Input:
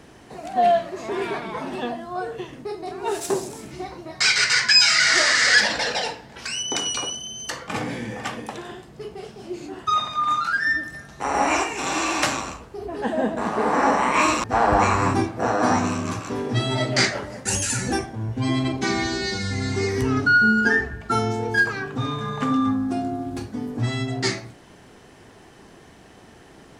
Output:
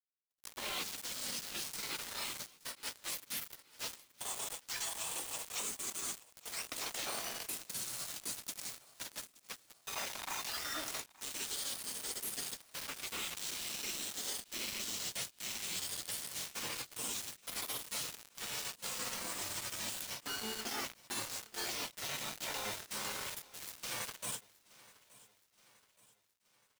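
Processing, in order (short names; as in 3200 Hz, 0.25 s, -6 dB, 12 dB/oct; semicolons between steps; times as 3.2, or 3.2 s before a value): Bessel high-pass 1100 Hz, order 2; spectral gate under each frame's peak -25 dB weak; dynamic EQ 1600 Hz, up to -5 dB, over -59 dBFS, Q 3.1; reverse; compressor 20:1, threshold -54 dBFS, peak gain reduction 26.5 dB; reverse; companded quantiser 4-bit; on a send: feedback echo 0.873 s, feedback 51%, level -21 dB; on the sum: ending taper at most 330 dB/s; gain +14.5 dB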